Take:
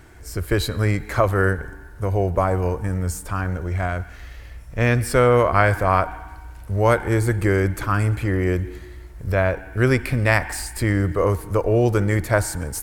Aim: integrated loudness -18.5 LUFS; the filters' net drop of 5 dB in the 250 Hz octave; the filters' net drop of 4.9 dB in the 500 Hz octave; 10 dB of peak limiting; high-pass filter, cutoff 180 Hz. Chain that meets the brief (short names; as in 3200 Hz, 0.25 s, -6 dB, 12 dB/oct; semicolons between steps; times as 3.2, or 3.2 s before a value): HPF 180 Hz; bell 250 Hz -3.5 dB; bell 500 Hz -5 dB; gain +9 dB; limiter -3.5 dBFS